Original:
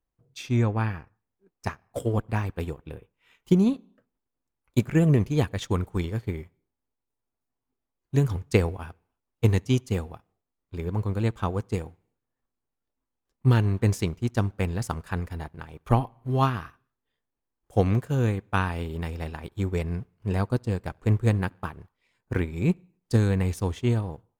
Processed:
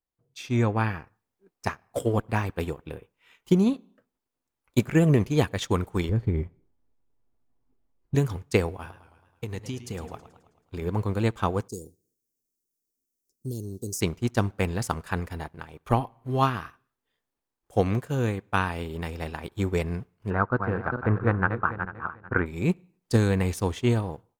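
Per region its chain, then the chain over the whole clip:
0:06.09–0:08.15: spectral tilt −3.5 dB per octave + downward compressor 2.5 to 1, threshold −21 dBFS
0:08.72–0:10.82: downward compressor 16 to 1, threshold −30 dBFS + feedback echo with a swinging delay time 108 ms, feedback 55%, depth 156 cents, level −13 dB
0:11.68–0:14.01: Chebyshev band-stop filter 410–5,600 Hz, order 3 + spectral tilt +2.5 dB per octave + downward compressor 2 to 1, threshold −35 dBFS
0:20.30–0:22.46: feedback delay that plays each chunk backwards 222 ms, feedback 41%, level −7 dB + low-pass with resonance 1,400 Hz, resonance Q 4.8
whole clip: low-shelf EQ 170 Hz −7 dB; automatic gain control gain up to 10 dB; level −5.5 dB

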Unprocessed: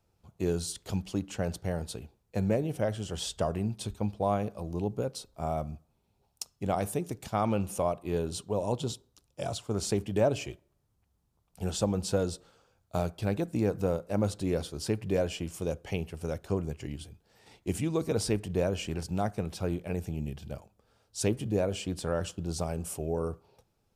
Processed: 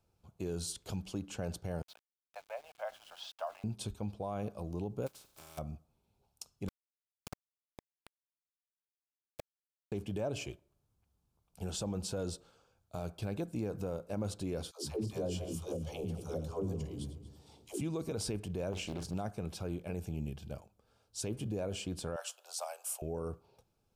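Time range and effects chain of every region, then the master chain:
0:01.82–0:03.64: Butterworth high-pass 640 Hz 48 dB per octave + high-frequency loss of the air 230 metres + centre clipping without the shift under −51.5 dBFS
0:05.06–0:05.57: compressing power law on the bin magnitudes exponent 0.31 + notch comb filter 240 Hz + downward compressor 12 to 1, threshold −47 dBFS
0:06.68–0:09.92: gate with flip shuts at −28 dBFS, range −33 dB + bit-depth reduction 6 bits, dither none + background raised ahead of every attack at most 74 dB per second
0:14.71–0:17.81: feedback delay that plays each chunk backwards 118 ms, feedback 60%, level −13 dB + flat-topped bell 2,000 Hz −8.5 dB 1.1 octaves + all-pass dispersion lows, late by 148 ms, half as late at 350 Hz
0:18.72–0:19.14: double-tracking delay 42 ms −10 dB + highs frequency-modulated by the lows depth 0.9 ms
0:22.16–0:23.02: Butterworth high-pass 590 Hz 48 dB per octave + high-shelf EQ 8,600 Hz +9 dB
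whole clip: notch filter 1,900 Hz, Q 7.3; brickwall limiter −24.5 dBFS; level −3.5 dB

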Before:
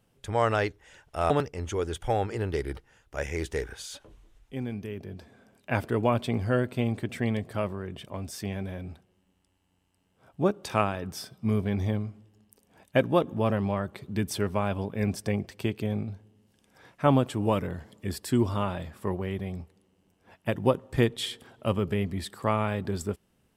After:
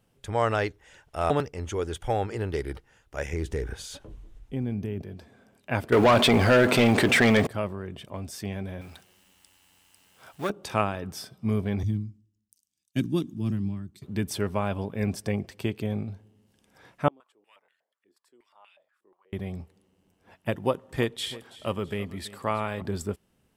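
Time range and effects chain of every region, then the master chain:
0:03.33–0:05.02: low-shelf EQ 450 Hz +10.5 dB + downward compressor 2.5 to 1, threshold −27 dBFS
0:05.92–0:07.47: mu-law and A-law mismatch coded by mu + mid-hump overdrive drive 23 dB, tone 4,300 Hz, clips at −10 dBFS + envelope flattener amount 50%
0:08.81–0:10.50: mu-law and A-law mismatch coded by mu + tilt shelving filter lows −9 dB, about 790 Hz + saturating transformer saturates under 900 Hz
0:11.83–0:14.02: drawn EQ curve 330 Hz 0 dB, 500 Hz −26 dB, 2,900 Hz −9 dB, 6,100 Hz +5 dB, 11,000 Hz −2 dB + multiband upward and downward expander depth 100%
0:17.08–0:19.33: first difference + band-pass on a step sequencer 8.3 Hz 330–2,600 Hz
0:20.55–0:22.82: low-shelf EQ 330 Hz −6.5 dB + repeating echo 329 ms, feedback 42%, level −17.5 dB
whole clip: no processing

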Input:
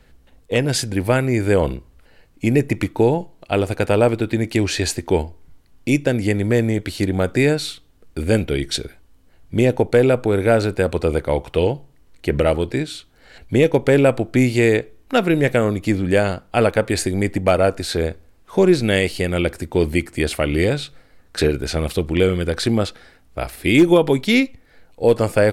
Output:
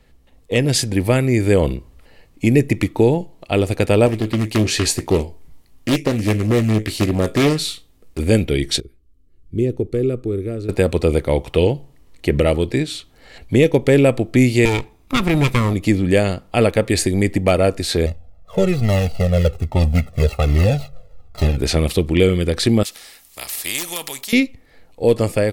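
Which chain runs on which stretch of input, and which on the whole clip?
0:04.06–0:08.19: high-shelf EQ 7,200 Hz +6.5 dB + tuned comb filter 54 Hz, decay 0.19 s, mix 70% + highs frequency-modulated by the lows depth 0.64 ms
0:08.80–0:10.69: guitar amp tone stack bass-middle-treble 10-0-1 + hollow resonant body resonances 370/1,200 Hz, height 13 dB, ringing for 20 ms
0:14.65–0:15.74: lower of the sound and its delayed copy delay 0.81 ms + notch filter 810 Hz, Q 14
0:18.06–0:21.58: running median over 25 samples + comb filter 1.5 ms, depth 84% + flanger whose copies keep moving one way falling 1.2 Hz
0:22.83–0:24.33: first-order pre-emphasis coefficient 0.97 + every bin compressed towards the loudest bin 2 to 1
whole clip: dynamic equaliser 910 Hz, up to −6 dB, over −31 dBFS, Q 0.96; automatic gain control; notch filter 1,500 Hz, Q 6.5; level −2 dB

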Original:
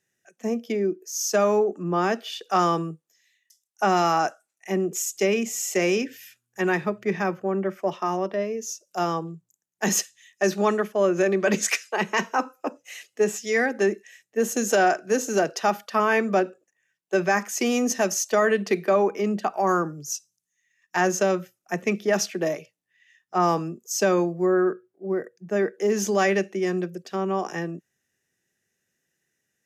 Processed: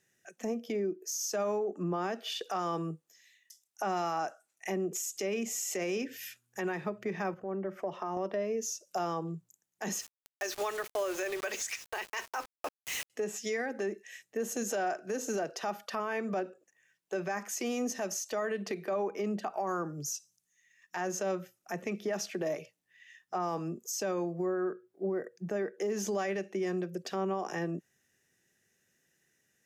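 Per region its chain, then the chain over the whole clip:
0:07.34–0:08.17: high-shelf EQ 2,200 Hz −9 dB + notch filter 2,400 Hz, Q 22 + downward compressor 2.5 to 1, threshold −42 dBFS
0:09.99–0:13.10: inverse Chebyshev high-pass filter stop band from 150 Hz + tilt shelving filter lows −7 dB, about 1,100 Hz + bit-depth reduction 6 bits, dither none
whole clip: downward compressor 6 to 1, threshold −34 dBFS; brickwall limiter −29.5 dBFS; dynamic equaliser 650 Hz, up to +3 dB, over −51 dBFS, Q 1; level +3 dB

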